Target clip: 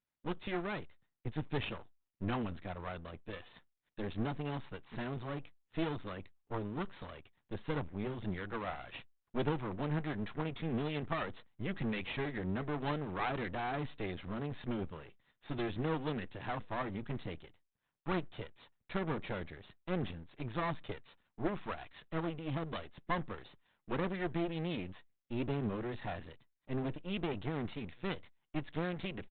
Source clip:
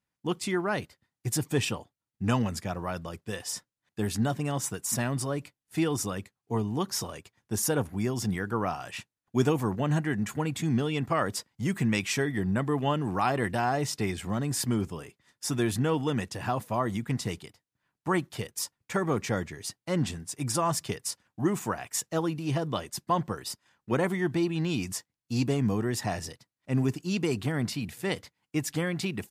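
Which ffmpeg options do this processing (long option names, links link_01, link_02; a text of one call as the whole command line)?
ffmpeg -i in.wav -af "aresample=8000,aeval=exprs='max(val(0),0)':channel_layout=same,aresample=44100,volume=-3.5dB" -ar 48000 -c:a libopus -b:a 64k out.opus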